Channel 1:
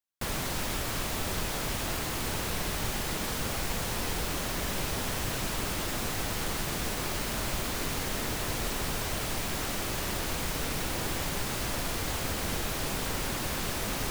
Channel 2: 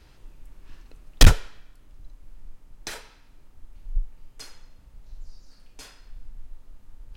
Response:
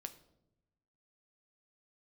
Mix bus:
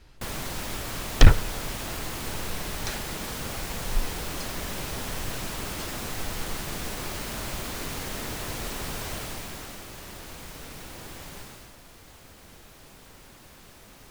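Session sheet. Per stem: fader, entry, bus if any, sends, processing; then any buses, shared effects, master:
9.14 s -1.5 dB -> 9.87 s -9.5 dB -> 11.4 s -9.5 dB -> 11.76 s -18 dB, 0.00 s, no send, dry
-2.5 dB, 0.00 s, send -5.5 dB, treble ducked by the level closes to 2300 Hz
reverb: on, RT60 0.85 s, pre-delay 7 ms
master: dry

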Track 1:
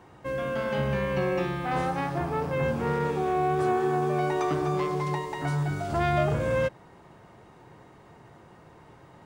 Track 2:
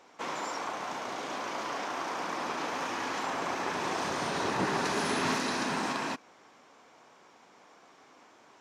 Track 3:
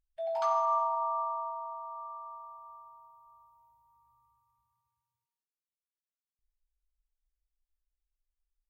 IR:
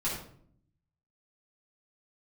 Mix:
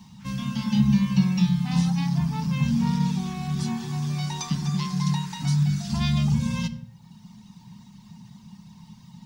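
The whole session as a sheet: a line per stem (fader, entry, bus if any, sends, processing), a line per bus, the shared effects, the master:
+2.0 dB, 0.00 s, send -14.5 dB, reverb removal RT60 0.99 s; EQ curve 110 Hz 0 dB, 210 Hz +15 dB, 330 Hz -21 dB, 620 Hz -23 dB, 930 Hz -4 dB, 1400 Hz -16 dB, 3600 Hz +8 dB, 5600 Hz +14 dB, 8100 Hz +4 dB
-15.5 dB, 0.00 s, no send, HPF 1400 Hz 24 dB/oct
off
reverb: on, RT60 0.60 s, pre-delay 4 ms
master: requantised 12-bit, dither none

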